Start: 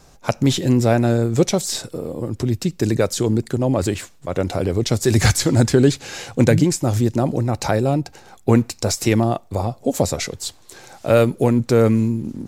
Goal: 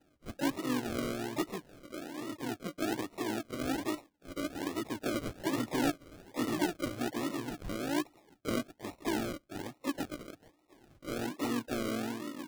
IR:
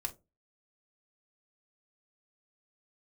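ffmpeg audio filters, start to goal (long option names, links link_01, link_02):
-filter_complex "[0:a]asplit=3[link_01][link_02][link_03];[link_01]bandpass=frequency=300:width_type=q:width=8,volume=0dB[link_04];[link_02]bandpass=frequency=870:width_type=q:width=8,volume=-6dB[link_05];[link_03]bandpass=frequency=2240:width_type=q:width=8,volume=-9dB[link_06];[link_04][link_05][link_06]amix=inputs=3:normalize=0,asoftclip=type=tanh:threshold=-22dB,asplit=3[link_07][link_08][link_09];[link_08]asetrate=52444,aresample=44100,atempo=0.840896,volume=-6dB[link_10];[link_09]asetrate=88200,aresample=44100,atempo=0.5,volume=-9dB[link_11];[link_07][link_10][link_11]amix=inputs=3:normalize=0,acrusher=samples=39:mix=1:aa=0.000001:lfo=1:lforange=23.4:lforate=1.2,volume=-5dB"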